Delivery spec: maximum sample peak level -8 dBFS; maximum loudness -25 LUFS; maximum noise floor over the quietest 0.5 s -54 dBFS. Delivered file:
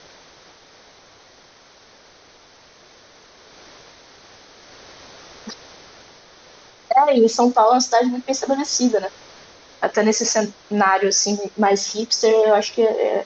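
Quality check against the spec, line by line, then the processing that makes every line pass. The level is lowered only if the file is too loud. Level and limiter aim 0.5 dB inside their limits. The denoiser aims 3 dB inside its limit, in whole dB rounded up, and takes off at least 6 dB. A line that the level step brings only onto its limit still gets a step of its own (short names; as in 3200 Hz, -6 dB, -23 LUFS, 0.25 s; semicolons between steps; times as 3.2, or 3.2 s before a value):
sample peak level -5.0 dBFS: fail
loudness -18.0 LUFS: fail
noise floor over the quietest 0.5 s -49 dBFS: fail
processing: gain -7.5 dB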